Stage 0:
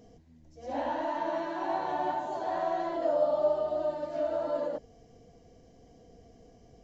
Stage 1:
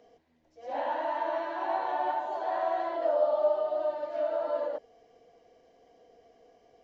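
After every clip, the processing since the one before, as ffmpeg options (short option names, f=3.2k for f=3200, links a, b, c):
-filter_complex "[0:a]acrossover=split=390 4200:gain=0.0794 1 0.178[a][b][c];[a][b][c]amix=inputs=3:normalize=0,volume=2dB"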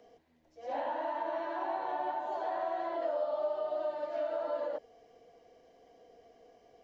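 -filter_complex "[0:a]acrossover=split=400|1200[a][b][c];[a]acompressor=threshold=-43dB:ratio=4[d];[b]acompressor=threshold=-35dB:ratio=4[e];[c]acompressor=threshold=-47dB:ratio=4[f];[d][e][f]amix=inputs=3:normalize=0"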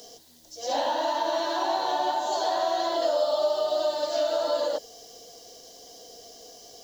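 -af "aexciter=amount=14.1:drive=4.7:freq=3.5k,volume=8.5dB"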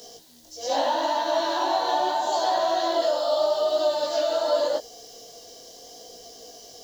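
-af "flanger=delay=16:depth=7:speed=0.8,volume=5.5dB"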